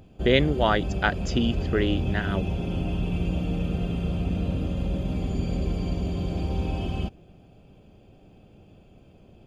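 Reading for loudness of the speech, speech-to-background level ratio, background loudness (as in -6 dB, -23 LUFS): -25.5 LUFS, 3.5 dB, -29.0 LUFS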